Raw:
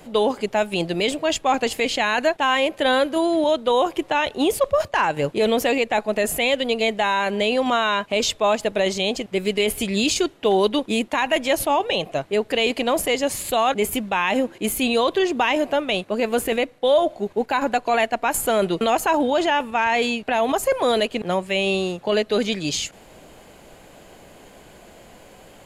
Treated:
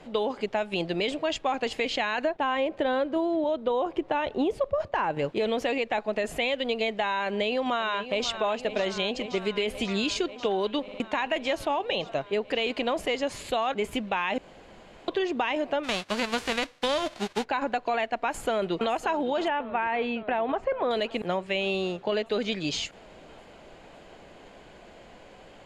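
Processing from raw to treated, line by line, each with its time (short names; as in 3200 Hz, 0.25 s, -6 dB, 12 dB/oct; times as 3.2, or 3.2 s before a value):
2.24–5.19 tilt shelf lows +5.5 dB, about 1300 Hz
7.25–8.33 echo throw 0.54 s, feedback 80%, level -13.5 dB
10.82 stutter in place 0.06 s, 3 plays
14.38–15.08 room tone
15.83–17.43 spectral whitening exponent 0.3
18.15–18.92 echo throw 0.56 s, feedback 75%, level -16 dB
19.48–20.91 LPF 2200 Hz
whole clip: LPF 4600 Hz 12 dB/oct; bell 110 Hz -3 dB 2.4 oct; compressor, threshold -21 dBFS; gain -2.5 dB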